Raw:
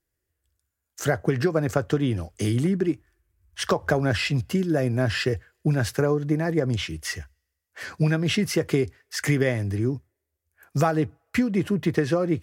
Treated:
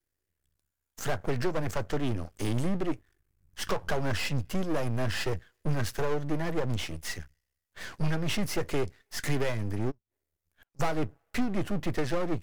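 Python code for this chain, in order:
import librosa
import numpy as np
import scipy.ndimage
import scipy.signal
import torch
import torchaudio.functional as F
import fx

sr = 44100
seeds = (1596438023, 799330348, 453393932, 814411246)

y = fx.cheby_harmonics(x, sr, harmonics=(4,), levels_db=(-14,), full_scale_db=-7.5)
y = fx.gate_flip(y, sr, shuts_db=-42.0, range_db=-30, at=(9.9, 10.79), fade=0.02)
y = np.maximum(y, 0.0)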